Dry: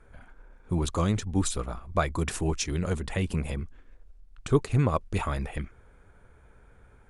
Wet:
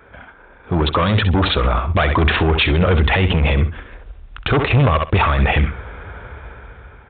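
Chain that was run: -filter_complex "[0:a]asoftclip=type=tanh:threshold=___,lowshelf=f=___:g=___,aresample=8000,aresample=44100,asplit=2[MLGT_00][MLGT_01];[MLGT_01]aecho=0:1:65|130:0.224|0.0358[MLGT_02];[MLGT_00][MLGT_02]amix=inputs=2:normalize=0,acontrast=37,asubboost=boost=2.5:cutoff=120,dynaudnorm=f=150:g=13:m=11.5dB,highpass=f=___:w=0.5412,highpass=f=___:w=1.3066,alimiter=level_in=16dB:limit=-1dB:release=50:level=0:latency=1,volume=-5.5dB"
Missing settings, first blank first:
-27dB, 300, -9, 48, 48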